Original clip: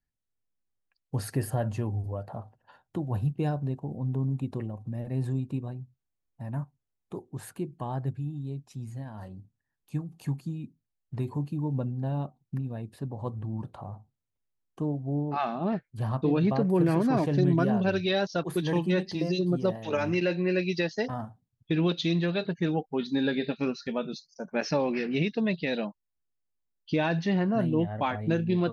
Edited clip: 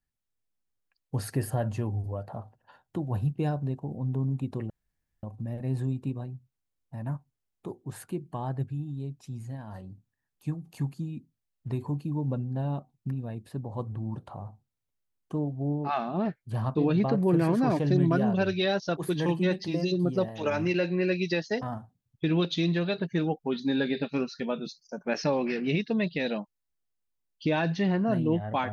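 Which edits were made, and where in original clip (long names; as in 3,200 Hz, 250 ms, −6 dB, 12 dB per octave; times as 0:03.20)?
0:04.70: splice in room tone 0.53 s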